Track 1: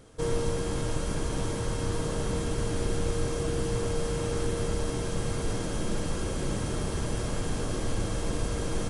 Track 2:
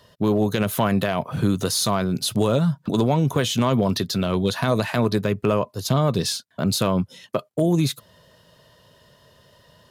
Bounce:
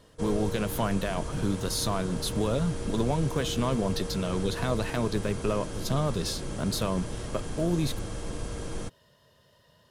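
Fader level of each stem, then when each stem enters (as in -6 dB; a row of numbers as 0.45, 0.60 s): -5.0, -8.0 dB; 0.00, 0.00 s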